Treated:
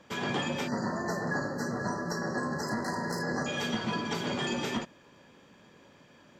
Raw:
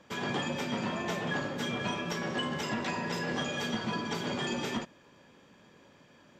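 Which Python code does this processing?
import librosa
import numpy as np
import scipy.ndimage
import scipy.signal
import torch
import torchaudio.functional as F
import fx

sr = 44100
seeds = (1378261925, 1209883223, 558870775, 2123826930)

y = fx.self_delay(x, sr, depth_ms=0.1, at=(2.67, 3.23))
y = fx.spec_erase(y, sr, start_s=0.68, length_s=2.79, low_hz=2000.0, high_hz=4000.0)
y = y * 10.0 ** (1.5 / 20.0)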